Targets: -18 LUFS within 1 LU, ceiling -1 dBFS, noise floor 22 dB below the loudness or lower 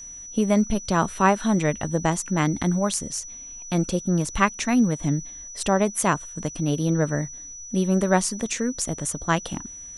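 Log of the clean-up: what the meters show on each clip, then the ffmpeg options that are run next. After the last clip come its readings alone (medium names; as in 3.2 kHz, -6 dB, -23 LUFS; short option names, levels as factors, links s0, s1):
steady tone 5.9 kHz; tone level -37 dBFS; loudness -24.0 LUFS; peak level -4.0 dBFS; loudness target -18.0 LUFS
-> -af "bandreject=f=5900:w=30"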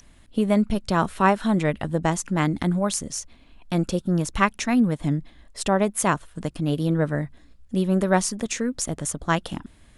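steady tone not found; loudness -24.0 LUFS; peak level -4.0 dBFS; loudness target -18.0 LUFS
-> -af "volume=2,alimiter=limit=0.891:level=0:latency=1"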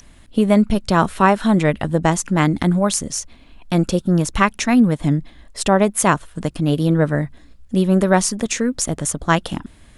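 loudness -18.0 LUFS; peak level -1.0 dBFS; noise floor -47 dBFS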